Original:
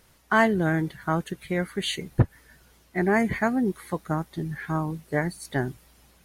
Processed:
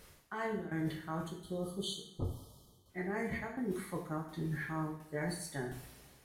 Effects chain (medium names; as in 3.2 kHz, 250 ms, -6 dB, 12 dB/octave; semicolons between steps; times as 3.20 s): tremolo saw down 1.4 Hz, depth 90%; spectral selection erased 1.27–2.90 s, 1.3–3 kHz; reverse; compression 10:1, threshold -37 dBFS, peak gain reduction 23 dB; reverse; two-slope reverb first 0.6 s, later 3 s, from -25 dB, DRR -1 dB